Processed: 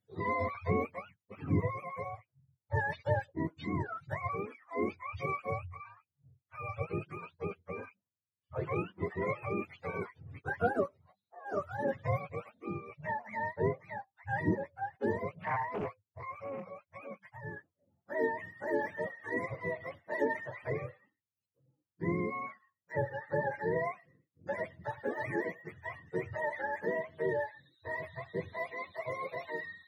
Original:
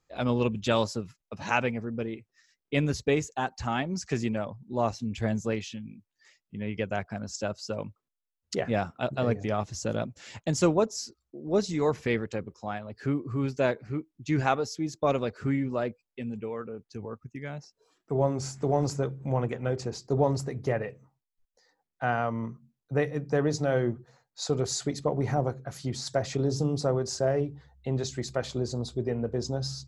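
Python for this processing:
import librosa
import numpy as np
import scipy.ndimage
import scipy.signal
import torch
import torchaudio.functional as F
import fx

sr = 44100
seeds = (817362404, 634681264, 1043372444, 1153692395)

y = fx.octave_mirror(x, sr, pivot_hz=500.0)
y = fx.doppler_dist(y, sr, depth_ms=0.61, at=(15.42, 16.66))
y = y * librosa.db_to_amplitude(-5.0)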